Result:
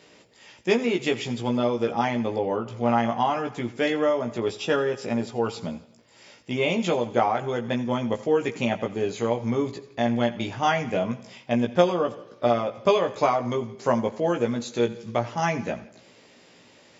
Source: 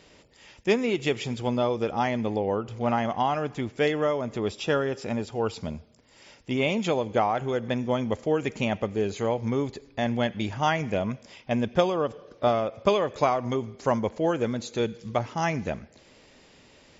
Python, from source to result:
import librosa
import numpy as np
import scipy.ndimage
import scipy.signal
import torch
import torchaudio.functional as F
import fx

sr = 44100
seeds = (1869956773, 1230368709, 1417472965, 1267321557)

y = scipy.signal.sosfilt(scipy.signal.butter(2, 130.0, 'highpass', fs=sr, output='sos'), x)
y = fx.doubler(y, sr, ms=17.0, db=-3.5)
y = fx.echo_feedback(y, sr, ms=86, feedback_pct=52, wet_db=-18.0)